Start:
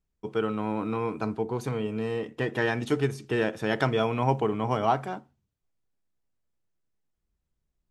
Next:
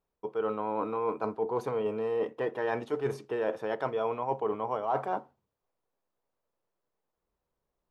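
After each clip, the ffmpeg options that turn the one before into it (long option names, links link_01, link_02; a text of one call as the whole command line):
ffmpeg -i in.wav -af "equalizer=frequency=500:width_type=o:width=1:gain=11,equalizer=frequency=1000:width_type=o:width=1:gain=10,equalizer=frequency=8000:width_type=o:width=1:gain=-5,areverse,acompressor=threshold=-24dB:ratio=12,areverse,lowshelf=frequency=150:gain=-7.5,volume=-2dB" out.wav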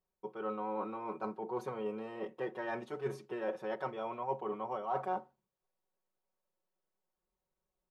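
ffmpeg -i in.wav -af "aecho=1:1:5.4:0.86,volume=-8dB" out.wav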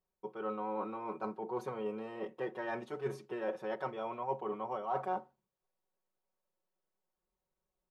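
ffmpeg -i in.wav -af anull out.wav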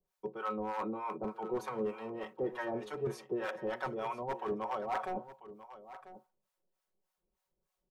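ffmpeg -i in.wav -filter_complex "[0:a]acrossover=split=120|1000[link_01][link_02][link_03];[link_02]aeval=exprs='0.0237*(abs(mod(val(0)/0.0237+3,4)-2)-1)':channel_layout=same[link_04];[link_01][link_04][link_03]amix=inputs=3:normalize=0,acrossover=split=670[link_05][link_06];[link_05]aeval=exprs='val(0)*(1-1/2+1/2*cos(2*PI*3.3*n/s))':channel_layout=same[link_07];[link_06]aeval=exprs='val(0)*(1-1/2-1/2*cos(2*PI*3.3*n/s))':channel_layout=same[link_08];[link_07][link_08]amix=inputs=2:normalize=0,aecho=1:1:992:0.178,volume=7dB" out.wav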